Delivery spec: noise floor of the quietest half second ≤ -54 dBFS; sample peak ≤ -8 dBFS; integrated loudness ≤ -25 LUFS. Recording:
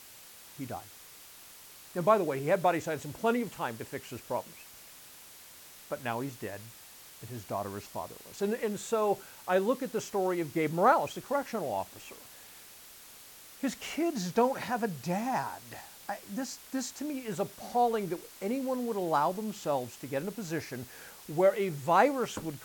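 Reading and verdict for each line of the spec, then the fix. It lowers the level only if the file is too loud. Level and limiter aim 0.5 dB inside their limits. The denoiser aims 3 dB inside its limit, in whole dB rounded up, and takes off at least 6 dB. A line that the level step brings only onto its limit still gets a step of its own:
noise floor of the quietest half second -52 dBFS: fail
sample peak -9.5 dBFS: pass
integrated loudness -32.0 LUFS: pass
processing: noise reduction 6 dB, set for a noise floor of -52 dBFS

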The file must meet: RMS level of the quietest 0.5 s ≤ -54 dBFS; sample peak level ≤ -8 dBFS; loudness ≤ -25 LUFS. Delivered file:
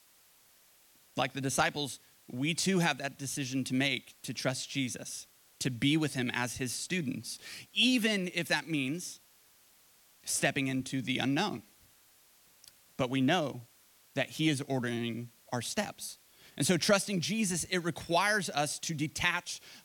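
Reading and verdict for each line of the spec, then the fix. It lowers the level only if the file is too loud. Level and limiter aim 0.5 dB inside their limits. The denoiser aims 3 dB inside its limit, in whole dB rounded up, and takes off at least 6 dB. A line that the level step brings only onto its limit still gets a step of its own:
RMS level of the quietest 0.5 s -63 dBFS: pass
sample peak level -12.0 dBFS: pass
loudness -32.0 LUFS: pass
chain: none needed

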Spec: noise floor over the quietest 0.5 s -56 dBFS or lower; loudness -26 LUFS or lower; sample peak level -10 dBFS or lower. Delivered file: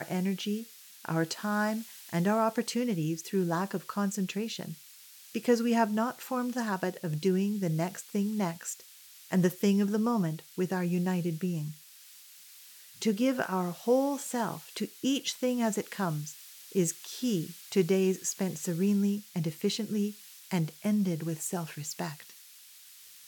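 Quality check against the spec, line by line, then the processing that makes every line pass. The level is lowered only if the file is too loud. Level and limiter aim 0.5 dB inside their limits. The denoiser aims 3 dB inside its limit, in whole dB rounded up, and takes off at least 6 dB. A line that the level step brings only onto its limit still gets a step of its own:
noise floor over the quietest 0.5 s -53 dBFS: fail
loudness -31.0 LUFS: pass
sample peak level -13.0 dBFS: pass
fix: noise reduction 6 dB, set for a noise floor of -53 dBFS

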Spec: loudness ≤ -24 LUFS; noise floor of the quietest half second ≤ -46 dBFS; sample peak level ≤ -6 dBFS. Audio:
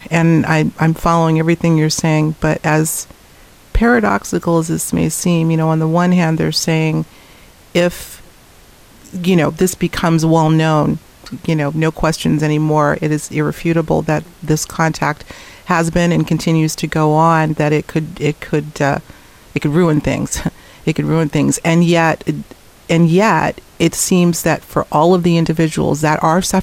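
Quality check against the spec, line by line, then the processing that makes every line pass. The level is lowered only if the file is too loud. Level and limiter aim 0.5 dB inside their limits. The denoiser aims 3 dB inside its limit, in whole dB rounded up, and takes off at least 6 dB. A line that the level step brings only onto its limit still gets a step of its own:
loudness -15.0 LUFS: fail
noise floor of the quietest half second -43 dBFS: fail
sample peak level -2.0 dBFS: fail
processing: trim -9.5 dB

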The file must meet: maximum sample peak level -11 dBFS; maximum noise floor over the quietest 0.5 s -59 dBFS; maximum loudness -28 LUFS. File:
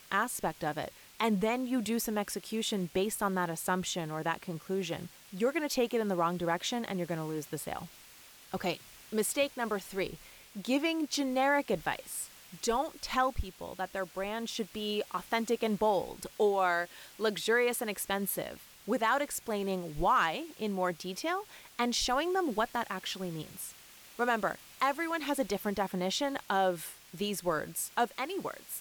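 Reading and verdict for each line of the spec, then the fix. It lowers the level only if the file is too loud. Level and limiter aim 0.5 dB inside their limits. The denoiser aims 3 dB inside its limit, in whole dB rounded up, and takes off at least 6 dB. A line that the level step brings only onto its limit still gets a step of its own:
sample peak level -16.5 dBFS: pass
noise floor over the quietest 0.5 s -55 dBFS: fail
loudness -33.0 LUFS: pass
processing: noise reduction 7 dB, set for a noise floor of -55 dBFS

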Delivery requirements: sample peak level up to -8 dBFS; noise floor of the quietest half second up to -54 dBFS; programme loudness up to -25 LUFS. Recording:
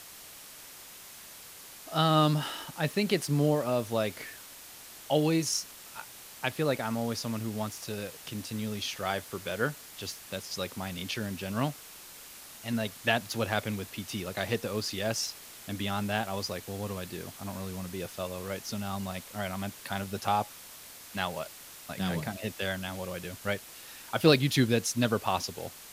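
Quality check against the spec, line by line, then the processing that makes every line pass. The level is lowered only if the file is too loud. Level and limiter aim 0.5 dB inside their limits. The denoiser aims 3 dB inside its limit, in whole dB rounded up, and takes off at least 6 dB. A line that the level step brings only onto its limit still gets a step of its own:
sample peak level -7.0 dBFS: fail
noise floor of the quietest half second -48 dBFS: fail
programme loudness -31.5 LUFS: pass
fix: noise reduction 9 dB, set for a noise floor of -48 dBFS; peak limiter -8.5 dBFS

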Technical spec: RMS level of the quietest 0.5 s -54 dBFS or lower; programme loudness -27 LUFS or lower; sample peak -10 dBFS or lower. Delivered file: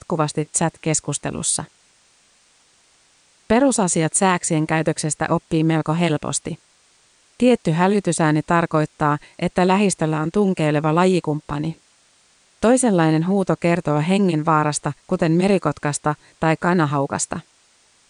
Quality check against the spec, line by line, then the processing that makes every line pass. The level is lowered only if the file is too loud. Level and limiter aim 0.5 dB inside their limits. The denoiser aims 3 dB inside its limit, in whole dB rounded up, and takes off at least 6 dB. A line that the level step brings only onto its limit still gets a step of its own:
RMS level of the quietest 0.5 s -57 dBFS: pass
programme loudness -19.5 LUFS: fail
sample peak -5.0 dBFS: fail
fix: trim -8 dB

